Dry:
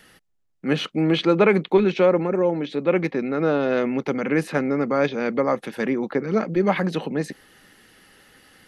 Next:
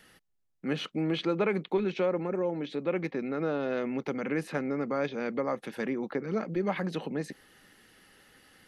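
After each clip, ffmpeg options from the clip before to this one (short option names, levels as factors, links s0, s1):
-af "acompressor=threshold=0.0501:ratio=1.5,volume=0.501"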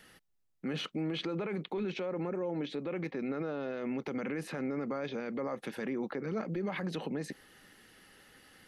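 -af "alimiter=level_in=1.5:limit=0.0631:level=0:latency=1:release=36,volume=0.668"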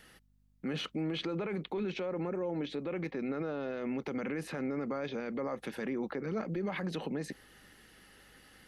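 -af "aeval=exprs='val(0)+0.000398*(sin(2*PI*50*n/s)+sin(2*PI*2*50*n/s)/2+sin(2*PI*3*50*n/s)/3+sin(2*PI*4*50*n/s)/4+sin(2*PI*5*50*n/s)/5)':c=same"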